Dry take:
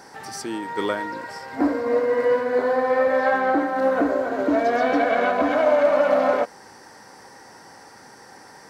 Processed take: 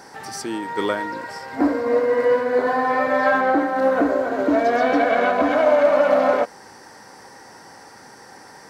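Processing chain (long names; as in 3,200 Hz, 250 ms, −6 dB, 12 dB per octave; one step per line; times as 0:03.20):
0:02.66–0:03.41: comb filter 6.8 ms, depth 70%
level +2 dB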